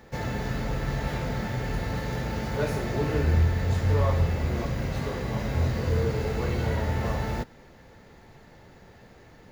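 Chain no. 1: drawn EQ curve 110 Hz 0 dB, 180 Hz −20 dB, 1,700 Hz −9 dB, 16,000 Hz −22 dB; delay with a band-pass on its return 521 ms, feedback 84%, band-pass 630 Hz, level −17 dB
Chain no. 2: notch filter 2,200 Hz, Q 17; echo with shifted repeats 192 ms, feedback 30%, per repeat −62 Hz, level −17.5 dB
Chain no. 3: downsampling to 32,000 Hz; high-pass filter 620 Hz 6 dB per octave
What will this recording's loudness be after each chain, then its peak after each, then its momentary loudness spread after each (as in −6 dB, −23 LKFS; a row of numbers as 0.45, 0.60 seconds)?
−30.5, −28.0, −35.5 LKFS; −13.5, −12.0, −19.5 dBFS; 11, 7, 4 LU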